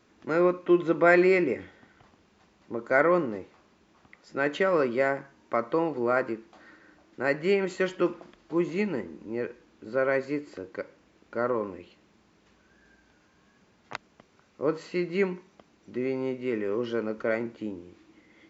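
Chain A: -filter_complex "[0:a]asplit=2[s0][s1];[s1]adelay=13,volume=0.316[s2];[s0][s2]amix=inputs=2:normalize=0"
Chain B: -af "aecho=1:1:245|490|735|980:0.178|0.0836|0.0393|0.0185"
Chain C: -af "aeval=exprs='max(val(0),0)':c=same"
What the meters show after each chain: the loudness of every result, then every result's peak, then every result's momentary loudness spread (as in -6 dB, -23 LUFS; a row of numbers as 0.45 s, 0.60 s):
-27.5 LUFS, -27.5 LUFS, -33.0 LUFS; -8.0 dBFS, -8.0 dBFS, -9.0 dBFS; 17 LU, 19 LU, 16 LU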